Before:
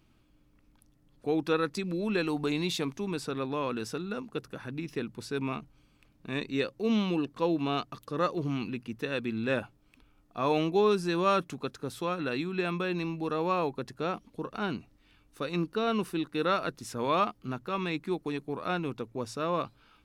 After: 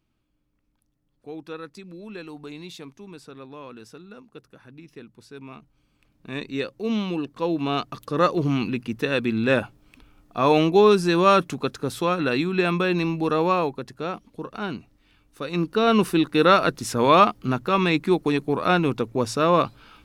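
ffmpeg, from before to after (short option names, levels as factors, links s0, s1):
-af "volume=7.94,afade=t=in:st=5.47:d=0.95:silence=0.298538,afade=t=in:st=7.37:d=0.9:silence=0.446684,afade=t=out:st=13.38:d=0.44:silence=0.473151,afade=t=in:st=15.43:d=0.6:silence=0.354813"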